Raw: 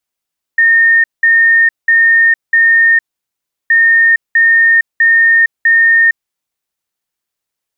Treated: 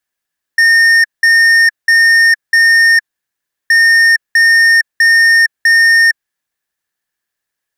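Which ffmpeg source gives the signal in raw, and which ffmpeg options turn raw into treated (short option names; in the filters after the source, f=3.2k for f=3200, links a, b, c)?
-f lavfi -i "aevalsrc='0.562*sin(2*PI*1830*t)*clip(min(mod(mod(t,3.12),0.65),0.46-mod(mod(t,3.12),0.65))/0.005,0,1)*lt(mod(t,3.12),2.6)':d=6.24:s=44100"
-af "equalizer=f=1.7k:t=o:w=0.26:g=13.5,asoftclip=type=tanh:threshold=-6.5dB"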